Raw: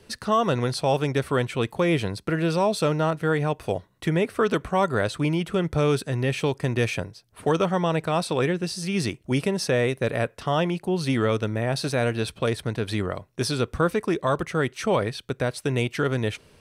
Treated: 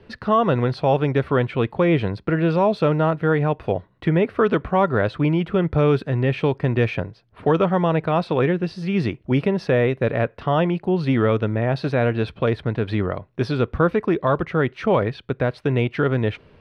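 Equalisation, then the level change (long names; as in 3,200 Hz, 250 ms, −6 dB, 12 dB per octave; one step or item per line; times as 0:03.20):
high-frequency loss of the air 350 metres
+5.0 dB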